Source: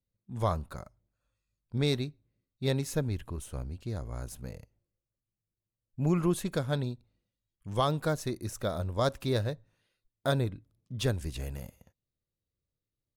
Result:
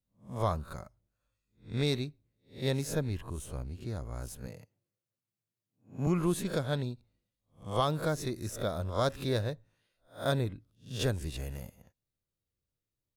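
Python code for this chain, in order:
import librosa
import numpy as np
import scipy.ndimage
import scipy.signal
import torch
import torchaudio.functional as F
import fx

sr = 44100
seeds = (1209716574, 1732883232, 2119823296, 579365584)

y = fx.spec_swells(x, sr, rise_s=0.31)
y = fx.highpass(y, sr, hz=110.0, slope=24, at=(4.47, 6.07))
y = y * 10.0 ** (-2.0 / 20.0)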